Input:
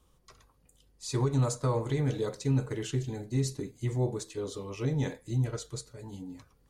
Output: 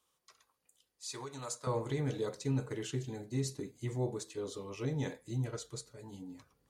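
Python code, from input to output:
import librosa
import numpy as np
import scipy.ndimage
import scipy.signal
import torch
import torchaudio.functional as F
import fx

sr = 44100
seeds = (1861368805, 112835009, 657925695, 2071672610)

y = fx.highpass(x, sr, hz=fx.steps((0.0, 1300.0), (1.67, 140.0)), slope=6)
y = F.gain(torch.from_numpy(y), -3.5).numpy()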